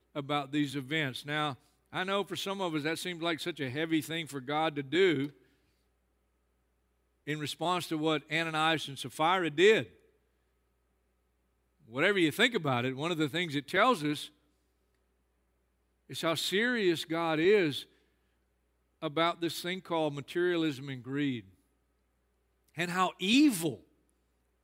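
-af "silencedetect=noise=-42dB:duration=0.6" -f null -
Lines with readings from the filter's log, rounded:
silence_start: 5.30
silence_end: 7.27 | silence_duration: 1.97
silence_start: 9.86
silence_end: 11.93 | silence_duration: 2.07
silence_start: 14.27
silence_end: 16.10 | silence_duration: 1.83
silence_start: 17.83
silence_end: 19.03 | silence_duration: 1.20
silence_start: 21.40
silence_end: 22.78 | silence_duration: 1.38
silence_start: 23.75
silence_end: 24.63 | silence_duration: 0.88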